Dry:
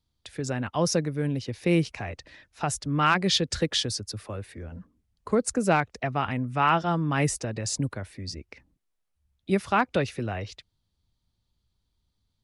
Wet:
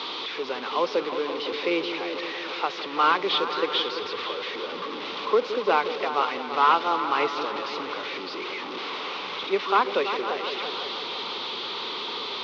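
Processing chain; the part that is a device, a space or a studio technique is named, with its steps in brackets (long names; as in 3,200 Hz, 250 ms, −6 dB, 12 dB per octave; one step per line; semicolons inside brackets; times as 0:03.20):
0:01.07–0:02.85: high-pass filter 120 Hz 12 dB per octave
digital answering machine (band-pass filter 380–3,400 Hz; linear delta modulator 32 kbit/s, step −30.5 dBFS; loudspeaker in its box 410–4,200 Hz, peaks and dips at 420 Hz +6 dB, 660 Hz −9 dB, 1,100 Hz +5 dB, 1,700 Hz −9 dB, 3,600 Hz +4 dB)
echo whose low-pass opens from repeat to repeat 169 ms, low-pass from 400 Hz, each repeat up 2 octaves, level −6 dB
level +4.5 dB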